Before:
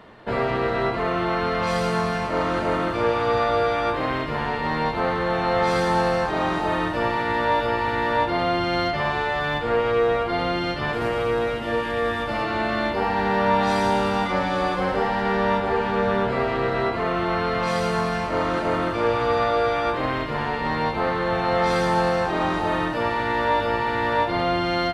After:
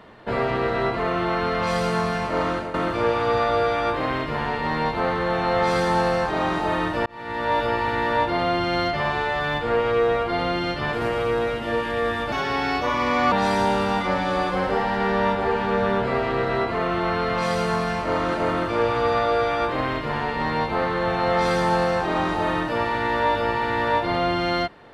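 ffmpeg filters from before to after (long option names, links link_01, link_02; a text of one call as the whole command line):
ffmpeg -i in.wav -filter_complex "[0:a]asplit=5[link_01][link_02][link_03][link_04][link_05];[link_01]atrim=end=2.74,asetpts=PTS-STARTPTS,afade=type=out:start_time=2.49:duration=0.25:silence=0.211349[link_06];[link_02]atrim=start=2.74:end=7.06,asetpts=PTS-STARTPTS,afade=type=in:duration=0.004:curve=hsin:silence=0.211349,afade=type=out:start_time=4.316:duration=0.004:curve=hsin[link_07];[link_03]atrim=start=7.06:end=12.324,asetpts=PTS-STARTPTS,afade=type=in:duration=0.53[link_08];[link_04]atrim=start=12.32:end=13.57,asetpts=PTS-STARTPTS,asetrate=55125,aresample=44100[link_09];[link_05]atrim=start=13.566[link_10];[link_06][link_07][link_08]concat=n=3:v=0:a=1[link_11];[link_11][link_09]acrossfade=duration=0.004:curve1=hsin:curve2=hsin[link_12];[link_12][link_10]acrossfade=duration=0.004:curve1=hsin:curve2=hsin" out.wav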